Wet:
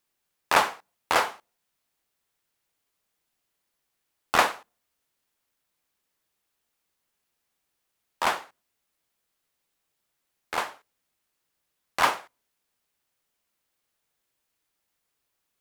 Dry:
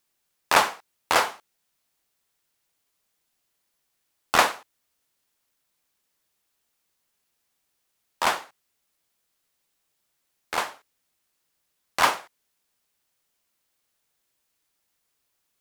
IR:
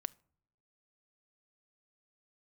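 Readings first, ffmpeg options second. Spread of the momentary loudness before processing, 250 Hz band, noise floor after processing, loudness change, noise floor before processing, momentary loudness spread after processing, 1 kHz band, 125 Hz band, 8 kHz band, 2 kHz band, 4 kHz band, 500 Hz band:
13 LU, −1.5 dB, −80 dBFS, −2.0 dB, −76 dBFS, 14 LU, −1.5 dB, −1.5 dB, −4.5 dB, −2.0 dB, −3.5 dB, −1.5 dB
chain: -filter_complex "[0:a]asplit=2[link_01][link_02];[1:a]atrim=start_sample=2205,asetrate=74970,aresample=44100,lowpass=4100[link_03];[link_02][link_03]afir=irnorm=-1:irlink=0,volume=-2.5dB[link_04];[link_01][link_04]amix=inputs=2:normalize=0,volume=-4dB"

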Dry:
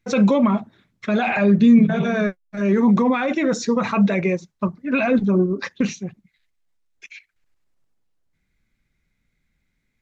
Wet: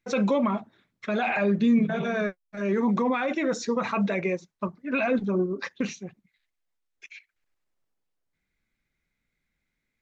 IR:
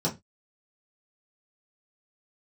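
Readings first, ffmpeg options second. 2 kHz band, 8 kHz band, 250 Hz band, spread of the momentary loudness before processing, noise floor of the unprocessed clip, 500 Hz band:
−4.5 dB, can't be measured, −8.5 dB, 11 LU, −73 dBFS, −5.0 dB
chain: -af "bass=frequency=250:gain=-7,treble=frequency=4000:gain=-2,volume=-4.5dB"

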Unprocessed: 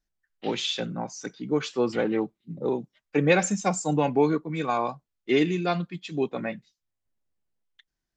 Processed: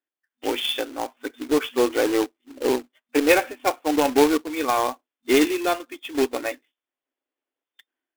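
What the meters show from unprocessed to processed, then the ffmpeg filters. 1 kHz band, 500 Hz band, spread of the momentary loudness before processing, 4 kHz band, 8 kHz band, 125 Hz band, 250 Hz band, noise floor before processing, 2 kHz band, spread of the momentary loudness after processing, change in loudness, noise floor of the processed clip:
+4.5 dB, +4.5 dB, 12 LU, +5.0 dB, +2.0 dB, −15.0 dB, +3.0 dB, −84 dBFS, +5.0 dB, 13 LU, +4.0 dB, below −85 dBFS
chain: -af "afftfilt=real='re*between(b*sr/4096,240,3600)':imag='im*between(b*sr/4096,240,3600)':win_size=4096:overlap=0.75,dynaudnorm=framelen=310:gausssize=3:maxgain=6.5dB,acrusher=bits=2:mode=log:mix=0:aa=0.000001,volume=-2dB"

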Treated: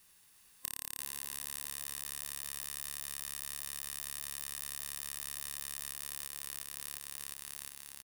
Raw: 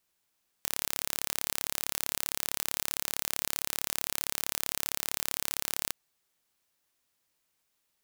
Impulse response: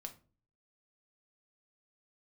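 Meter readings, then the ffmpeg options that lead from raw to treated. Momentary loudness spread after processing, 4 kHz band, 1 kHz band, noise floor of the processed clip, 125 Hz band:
3 LU, −8.0 dB, −11.0 dB, −64 dBFS, −6.0 dB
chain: -af "aecho=1:1:1.1:0.36,aecho=1:1:354|708|1062|1416|1770|2124|2478:0.531|0.297|0.166|0.0932|0.0522|0.0292|0.0164,asoftclip=type=hard:threshold=-11.5dB,superequalizer=6b=0.631:8b=0.447:9b=0.562:16b=1.78,acompressor=threshold=-46dB:ratio=10,volume=12dB"

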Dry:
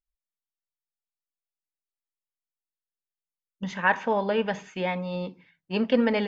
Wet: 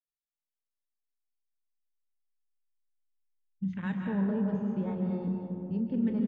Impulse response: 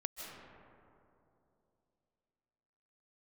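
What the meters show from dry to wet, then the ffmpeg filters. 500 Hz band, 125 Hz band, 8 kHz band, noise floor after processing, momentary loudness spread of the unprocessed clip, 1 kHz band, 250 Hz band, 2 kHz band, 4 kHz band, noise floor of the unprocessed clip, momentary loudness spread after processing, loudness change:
−12.0 dB, +3.0 dB, can't be measured, below −85 dBFS, 12 LU, −17.0 dB, 0.0 dB, −18.5 dB, below −20 dB, below −85 dBFS, 6 LU, −5.0 dB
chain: -filter_complex "[0:a]afwtdn=0.0316,bandreject=frequency=60:width_type=h:width=6,bandreject=frequency=120:width_type=h:width=6,bandreject=frequency=180:width_type=h:width=6,asubboost=boost=11.5:cutoff=200,acrossover=split=390|3000[link_01][link_02][link_03];[link_02]acompressor=threshold=-28dB:ratio=6[link_04];[link_01][link_04][link_03]amix=inputs=3:normalize=0,alimiter=limit=-17dB:level=0:latency=1:release=264,asplit=2[link_05][link_06];[link_06]adelay=31,volume=-13dB[link_07];[link_05][link_07]amix=inputs=2:normalize=0[link_08];[1:a]atrim=start_sample=2205[link_09];[link_08][link_09]afir=irnorm=-1:irlink=0,volume=-5.5dB"

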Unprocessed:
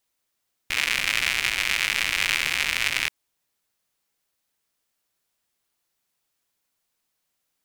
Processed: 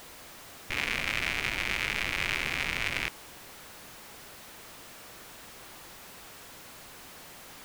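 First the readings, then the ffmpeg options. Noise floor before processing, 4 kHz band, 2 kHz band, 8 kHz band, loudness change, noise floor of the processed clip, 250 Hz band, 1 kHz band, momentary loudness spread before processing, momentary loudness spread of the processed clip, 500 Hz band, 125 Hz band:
−78 dBFS, −9.0 dB, −6.5 dB, −10.0 dB, −7.0 dB, −49 dBFS, +3.5 dB, −3.0 dB, 4 LU, 17 LU, +2.0 dB, +3.5 dB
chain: -af "aeval=exprs='val(0)+0.5*0.0282*sgn(val(0))':channel_layout=same,highshelf=frequency=3100:gain=-11,volume=-3.5dB"

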